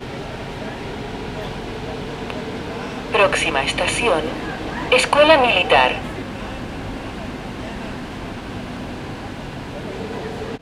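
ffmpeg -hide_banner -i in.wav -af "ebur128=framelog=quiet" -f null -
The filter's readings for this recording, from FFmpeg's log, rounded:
Integrated loudness:
  I:         -20.8 LUFS
  Threshold: -30.9 LUFS
Loudness range:
  LRA:        13.7 LU
  Threshold: -39.8 LUFS
  LRA low:   -30.0 LUFS
  LRA high:  -16.3 LUFS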